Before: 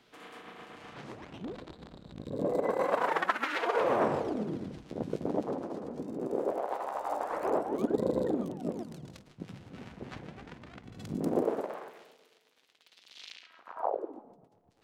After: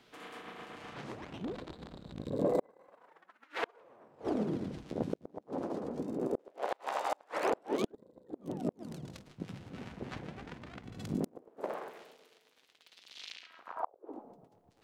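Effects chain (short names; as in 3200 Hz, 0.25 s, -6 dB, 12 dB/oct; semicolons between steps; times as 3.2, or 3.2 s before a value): 6.39–7.92 weighting filter D; flipped gate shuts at -20 dBFS, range -33 dB; gain +1 dB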